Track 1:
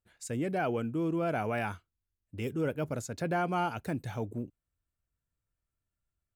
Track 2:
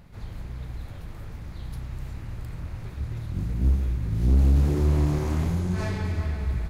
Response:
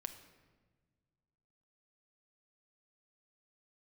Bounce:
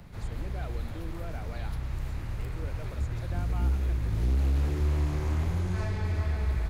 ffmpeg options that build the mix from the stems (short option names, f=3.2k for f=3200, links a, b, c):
-filter_complex "[0:a]volume=-11.5dB[a];[1:a]volume=2.5dB[b];[a][b]amix=inputs=2:normalize=0,acrossover=split=100|290|1300|3600[c][d][e][f][g];[c]acompressor=threshold=-25dB:ratio=4[h];[d]acompressor=threshold=-44dB:ratio=4[i];[e]acompressor=threshold=-40dB:ratio=4[j];[f]acompressor=threshold=-47dB:ratio=4[k];[g]acompressor=threshold=-56dB:ratio=4[l];[h][i][j][k][l]amix=inputs=5:normalize=0"